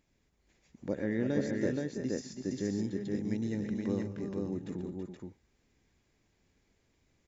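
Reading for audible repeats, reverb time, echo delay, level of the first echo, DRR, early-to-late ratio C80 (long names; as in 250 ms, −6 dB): 4, no reverb audible, 119 ms, −14.0 dB, no reverb audible, no reverb audible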